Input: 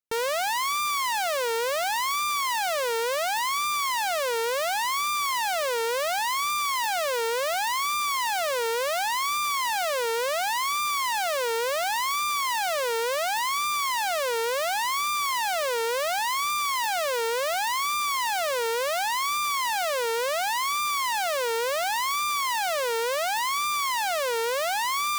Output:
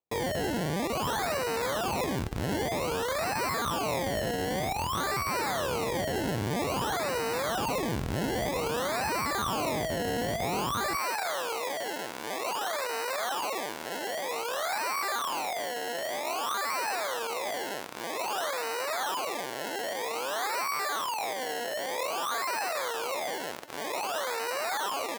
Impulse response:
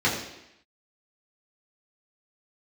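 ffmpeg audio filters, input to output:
-af "equalizer=f=3.9k:w=4.1:g=10.5,aecho=1:1:1099:0.158,acrusher=samples=25:mix=1:aa=0.000001:lfo=1:lforange=25:lforate=0.52,asetnsamples=n=441:p=0,asendcmd='10.96 highpass f 530',highpass=62,volume=-4.5dB"

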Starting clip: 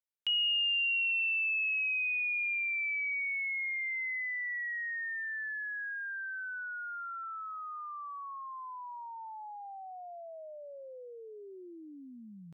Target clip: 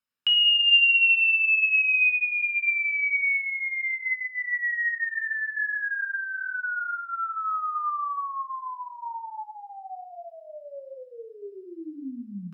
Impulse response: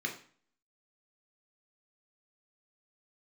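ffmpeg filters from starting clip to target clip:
-filter_complex "[0:a]asplit=3[a][b][c];[a]afade=t=out:st=4.98:d=0.02[d];[b]flanger=delay=17:depth=5.9:speed=1.2,afade=t=in:st=4.98:d=0.02,afade=t=out:st=7.18:d=0.02[e];[c]afade=t=in:st=7.18:d=0.02[f];[d][e][f]amix=inputs=3:normalize=0[g];[1:a]atrim=start_sample=2205,asetrate=33516,aresample=44100[h];[g][h]afir=irnorm=-1:irlink=0,volume=3.5dB"

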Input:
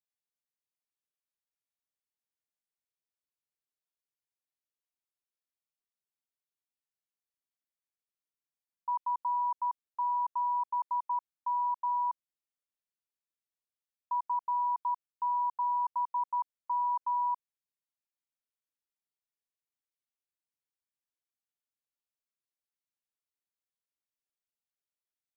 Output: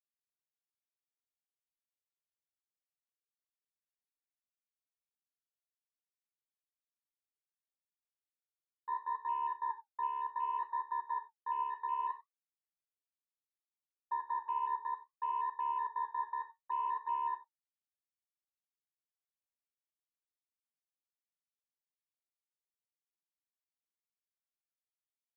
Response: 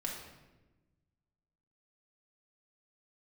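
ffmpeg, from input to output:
-filter_complex "[0:a]highpass=f=920:w=0.5412,highpass=f=920:w=1.3066,afwtdn=0.00631,aeval=exprs='val(0)*sin(2*PI*35*n/s)':c=same,flanger=delay=5.1:depth=9.2:regen=54:speed=0.64:shape=sinusoidal,asplit=2[a][b];[1:a]atrim=start_sample=2205,atrim=end_sample=4410[c];[b][c]afir=irnorm=-1:irlink=0,volume=-4dB[d];[a][d]amix=inputs=2:normalize=0"

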